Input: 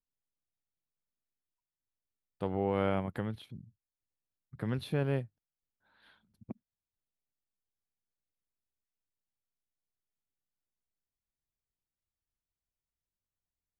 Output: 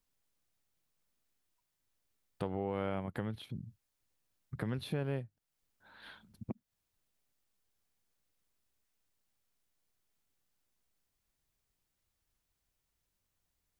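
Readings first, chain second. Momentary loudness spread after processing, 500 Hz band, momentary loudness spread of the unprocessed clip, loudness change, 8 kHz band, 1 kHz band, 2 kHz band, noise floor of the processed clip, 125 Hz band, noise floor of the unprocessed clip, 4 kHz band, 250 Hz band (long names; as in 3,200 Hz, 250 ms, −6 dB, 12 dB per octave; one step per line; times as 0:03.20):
17 LU, −5.0 dB, 19 LU, −5.5 dB, can't be measured, −5.0 dB, −3.0 dB, −84 dBFS, −3.5 dB, below −85 dBFS, −1.0 dB, −3.5 dB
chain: downward compressor 2.5 to 1, threshold −51 dBFS, peak gain reduction 17 dB
level +10.5 dB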